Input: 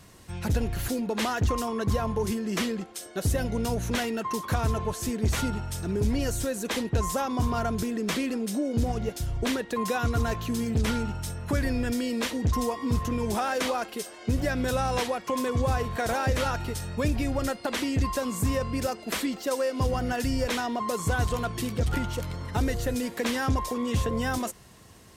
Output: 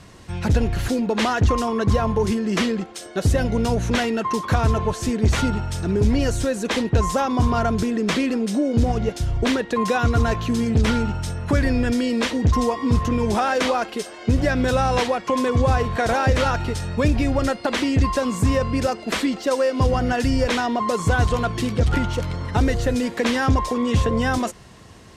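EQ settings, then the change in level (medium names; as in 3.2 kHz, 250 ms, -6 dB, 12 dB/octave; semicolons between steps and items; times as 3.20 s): distance through air 58 m; +7.5 dB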